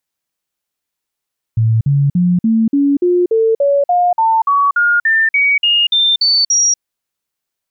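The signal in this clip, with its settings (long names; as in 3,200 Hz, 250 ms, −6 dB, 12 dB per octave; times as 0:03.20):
stepped sweep 112 Hz up, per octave 3, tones 18, 0.24 s, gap 0.05 s −9 dBFS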